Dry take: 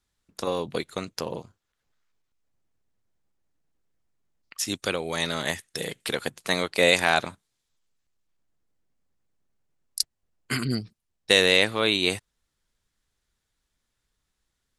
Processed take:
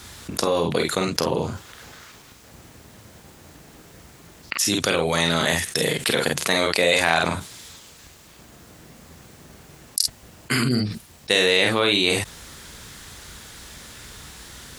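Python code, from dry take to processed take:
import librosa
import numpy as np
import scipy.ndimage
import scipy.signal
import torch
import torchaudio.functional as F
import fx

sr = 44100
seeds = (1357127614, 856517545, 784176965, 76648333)

y = scipy.signal.sosfilt(scipy.signal.butter(2, 60.0, 'highpass', fs=sr, output='sos'), x)
y = fx.room_early_taps(y, sr, ms=(35, 48), db=(-10.0, -6.5))
y = fx.env_flatten(y, sr, amount_pct=70)
y = y * 10.0 ** (-2.5 / 20.0)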